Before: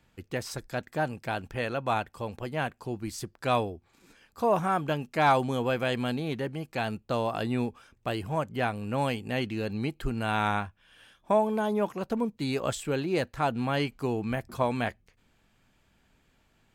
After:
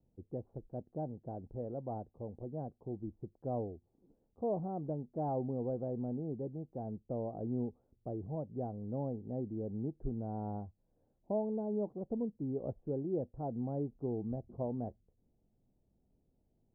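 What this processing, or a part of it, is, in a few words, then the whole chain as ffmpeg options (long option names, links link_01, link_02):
under water: -af "lowpass=frequency=520:width=0.5412,lowpass=frequency=520:width=1.3066,equalizer=frequency=780:width_type=o:width=0.6:gain=7,volume=-7dB"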